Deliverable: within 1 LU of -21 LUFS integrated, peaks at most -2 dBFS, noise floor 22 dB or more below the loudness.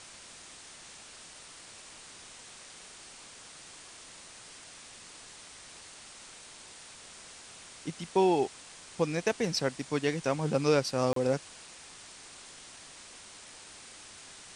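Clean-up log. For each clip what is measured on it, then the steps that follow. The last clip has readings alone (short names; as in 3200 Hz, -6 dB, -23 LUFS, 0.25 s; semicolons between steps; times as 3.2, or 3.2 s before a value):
dropouts 1; longest dropout 33 ms; noise floor -50 dBFS; noise floor target -52 dBFS; loudness -30.0 LUFS; peak -13.0 dBFS; loudness target -21.0 LUFS
-> interpolate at 11.13, 33 ms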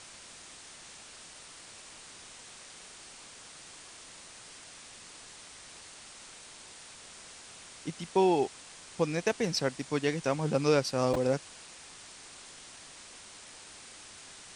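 dropouts 0; noise floor -50 dBFS; noise floor target -52 dBFS
-> denoiser 6 dB, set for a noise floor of -50 dBFS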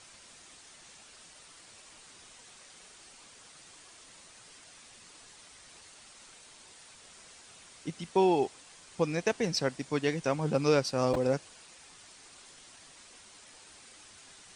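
noise floor -55 dBFS; loudness -30.0 LUFS; peak -13.5 dBFS; loudness target -21.0 LUFS
-> gain +9 dB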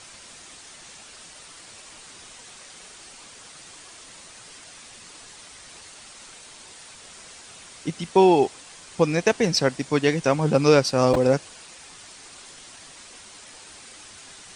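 loudness -21.0 LUFS; peak -4.5 dBFS; noise floor -46 dBFS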